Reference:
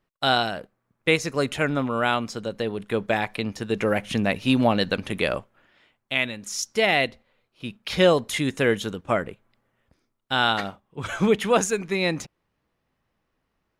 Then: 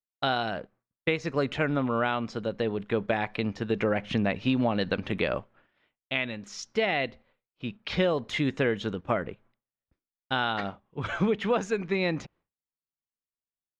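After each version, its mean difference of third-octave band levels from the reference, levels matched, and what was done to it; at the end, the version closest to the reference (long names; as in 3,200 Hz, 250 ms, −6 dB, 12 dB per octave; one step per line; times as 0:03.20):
4.0 dB: downward expander −52 dBFS
downward compressor 6 to 1, threshold −21 dBFS, peak gain reduction 8.5 dB
high-frequency loss of the air 180 metres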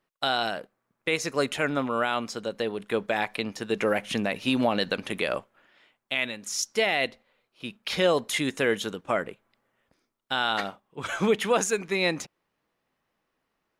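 2.5 dB: low-shelf EQ 160 Hz −11.5 dB
brickwall limiter −12.5 dBFS, peak gain reduction 7 dB
parametric band 82 Hz −4.5 dB 0.86 octaves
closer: second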